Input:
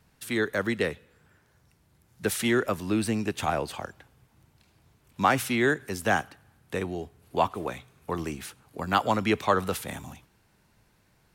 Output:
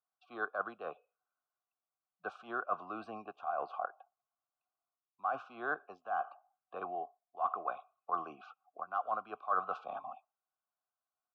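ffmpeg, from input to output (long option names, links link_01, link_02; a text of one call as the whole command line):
ffmpeg -i in.wav -filter_complex "[0:a]asplit=3[link_01][link_02][link_03];[link_01]bandpass=frequency=730:width_type=q:width=8,volume=0dB[link_04];[link_02]bandpass=frequency=1090:width_type=q:width=8,volume=-6dB[link_05];[link_03]bandpass=frequency=2440:width_type=q:width=8,volume=-9dB[link_06];[link_04][link_05][link_06]amix=inputs=3:normalize=0,lowshelf=frequency=88:gain=-4.5,acrossover=split=6800[link_07][link_08];[link_07]aexciter=amount=7.1:drive=4.8:freq=2600[link_09];[link_09][link_08]amix=inputs=2:normalize=0,afftdn=noise_reduction=28:noise_floor=-58,areverse,acompressor=threshold=-42dB:ratio=16,areverse,firequalizer=gain_entry='entry(470,0);entry(1500,15);entry(2100,-19);entry(7800,-25)':delay=0.05:min_phase=1,volume=5dB" out.wav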